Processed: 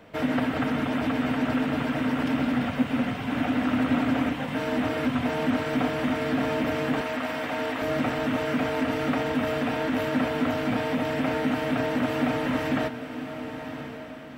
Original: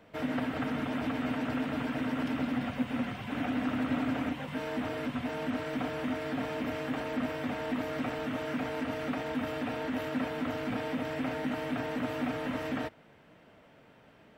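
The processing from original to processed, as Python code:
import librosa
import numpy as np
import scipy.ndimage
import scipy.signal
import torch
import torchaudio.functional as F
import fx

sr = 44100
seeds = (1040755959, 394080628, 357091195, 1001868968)

y = fx.rider(x, sr, range_db=10, speed_s=2.0)
y = fx.highpass(y, sr, hz=520.0, slope=12, at=(7.01, 7.82))
y = fx.echo_diffused(y, sr, ms=1079, feedback_pct=43, wet_db=-10.0)
y = F.gain(torch.from_numpy(y), 7.0).numpy()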